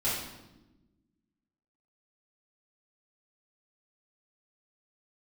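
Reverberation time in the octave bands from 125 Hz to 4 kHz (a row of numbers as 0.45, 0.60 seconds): 1.7, 1.8, 1.2, 0.90, 0.80, 0.80 seconds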